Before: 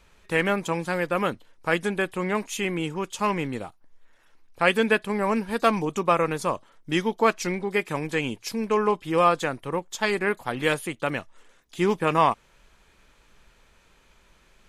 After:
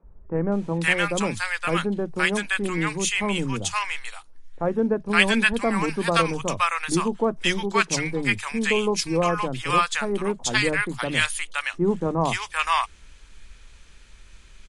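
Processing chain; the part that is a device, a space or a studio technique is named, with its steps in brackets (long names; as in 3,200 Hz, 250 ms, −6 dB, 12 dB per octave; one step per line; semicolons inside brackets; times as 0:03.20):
elliptic low-pass filter 10,000 Hz, stop band 40 dB
smiley-face EQ (low-shelf EQ 88 Hz +8.5 dB; parametric band 550 Hz −7 dB 2.4 octaves; high-shelf EQ 8,700 Hz +5 dB)
three-band delay without the direct sound mids, lows, highs 30/520 ms, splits 160/880 Hz
level +7.5 dB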